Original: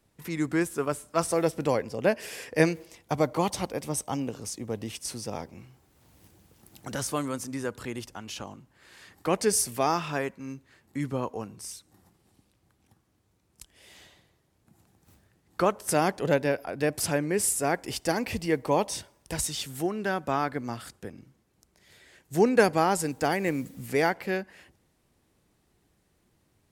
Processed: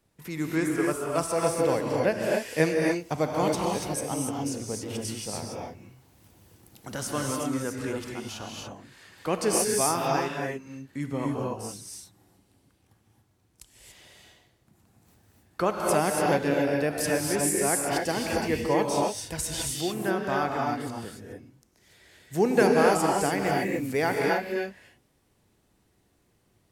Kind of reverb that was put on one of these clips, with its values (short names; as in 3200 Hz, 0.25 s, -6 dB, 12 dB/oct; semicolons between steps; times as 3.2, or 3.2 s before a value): non-linear reverb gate 0.31 s rising, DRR -1 dB; gain -2 dB